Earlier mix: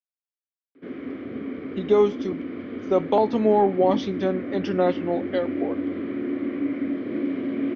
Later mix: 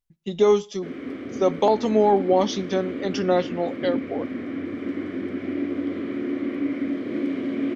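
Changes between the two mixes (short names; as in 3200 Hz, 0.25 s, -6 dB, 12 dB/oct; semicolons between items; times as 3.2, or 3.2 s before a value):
speech: entry -1.50 s; master: remove air absorption 220 m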